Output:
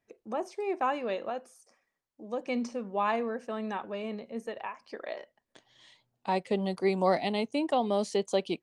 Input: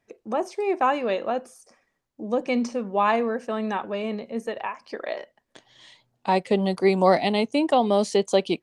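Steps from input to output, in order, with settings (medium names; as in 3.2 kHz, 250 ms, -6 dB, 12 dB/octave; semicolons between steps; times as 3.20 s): 1.29–2.48 s: bass shelf 320 Hz -7.5 dB; trim -7.5 dB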